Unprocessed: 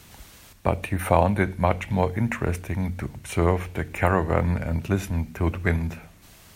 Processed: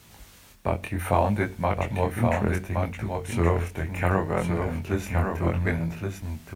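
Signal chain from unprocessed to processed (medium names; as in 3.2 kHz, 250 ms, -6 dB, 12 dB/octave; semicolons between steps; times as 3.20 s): delay 1120 ms -4.5 dB; chorus 0.67 Hz, delay 18 ms, depth 7.6 ms; bit crusher 11-bit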